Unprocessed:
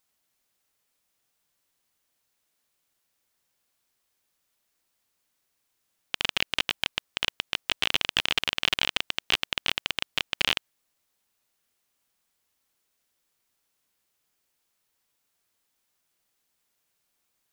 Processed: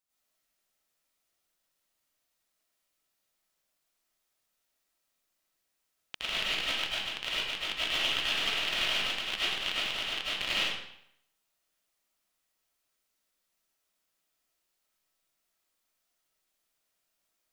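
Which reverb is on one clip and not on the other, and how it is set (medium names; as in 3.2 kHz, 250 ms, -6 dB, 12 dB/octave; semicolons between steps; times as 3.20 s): algorithmic reverb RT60 0.72 s, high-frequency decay 0.9×, pre-delay 60 ms, DRR -9.5 dB; trim -12.5 dB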